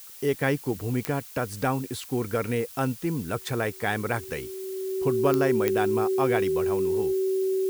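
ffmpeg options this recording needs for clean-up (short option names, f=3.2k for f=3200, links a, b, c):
-af "adeclick=t=4,bandreject=f=380:w=30,afftdn=nr=28:nf=-44"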